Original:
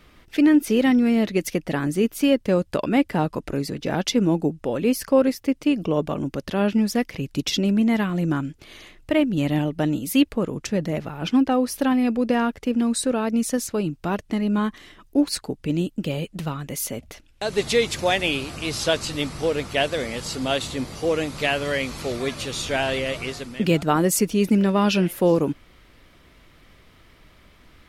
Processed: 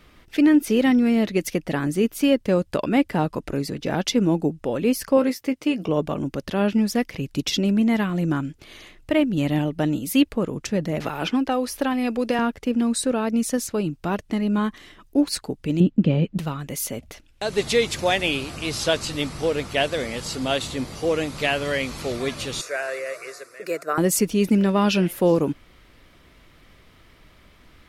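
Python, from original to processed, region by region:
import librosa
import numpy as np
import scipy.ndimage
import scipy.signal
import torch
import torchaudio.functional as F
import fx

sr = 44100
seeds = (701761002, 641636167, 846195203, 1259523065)

y = fx.chain(x, sr, fx.highpass(hz=190.0, slope=6),
    fx.peak_eq(hz=2100.0, db=3.0, octaves=0.2),
    fx.doubler(ms=16.0, db=-9.5), at=(5.17, 5.89))
y = fx.chain(y, sr, fx.peak_eq(hz=160.0, db=-8.0, octaves=1.6),
    fx.band_squash(depth_pct=70), at=(11.0, 12.39))
y = fx.chain(y, sr, fx.lowpass(hz=3100.0, slope=12),
    fx.peak_eq(hz=190.0, db=10.0, octaves=1.9), at=(15.8, 16.38))
y = fx.chain(y, sr, fx.highpass(hz=470.0, slope=12),
    fx.fixed_phaser(hz=860.0, stages=6), at=(22.61, 23.98))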